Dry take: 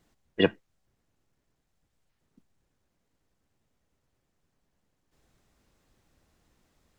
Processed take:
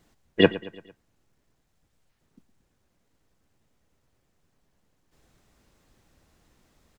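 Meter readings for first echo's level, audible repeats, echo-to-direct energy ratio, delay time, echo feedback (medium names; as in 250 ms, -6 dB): -17.5 dB, 3, -16.0 dB, 113 ms, 51%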